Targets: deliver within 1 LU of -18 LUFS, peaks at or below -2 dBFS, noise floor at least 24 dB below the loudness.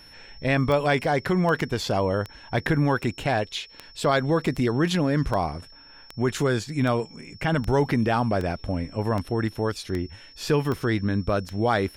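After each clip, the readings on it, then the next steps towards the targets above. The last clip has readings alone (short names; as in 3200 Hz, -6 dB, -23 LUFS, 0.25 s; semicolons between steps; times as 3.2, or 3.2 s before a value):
clicks 15; steady tone 5400 Hz; tone level -48 dBFS; loudness -25.0 LUFS; peak -10.5 dBFS; loudness target -18.0 LUFS
-> de-click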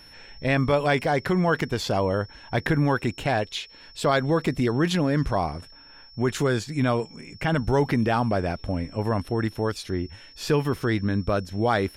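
clicks 0; steady tone 5400 Hz; tone level -48 dBFS
-> notch 5400 Hz, Q 30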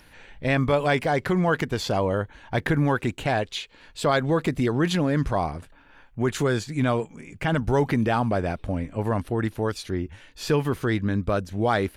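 steady tone none; loudness -25.0 LUFS; peak -10.5 dBFS; loudness target -18.0 LUFS
-> gain +7 dB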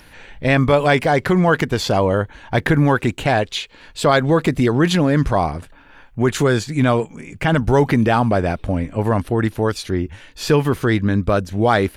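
loudness -18.0 LUFS; peak -3.5 dBFS; noise floor -46 dBFS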